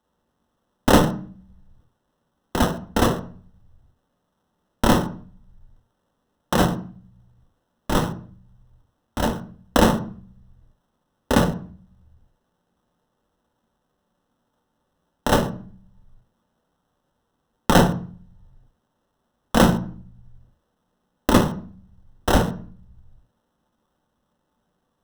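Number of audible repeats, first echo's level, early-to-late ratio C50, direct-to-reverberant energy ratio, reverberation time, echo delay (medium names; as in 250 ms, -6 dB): no echo, no echo, 13.0 dB, 6.0 dB, 0.45 s, no echo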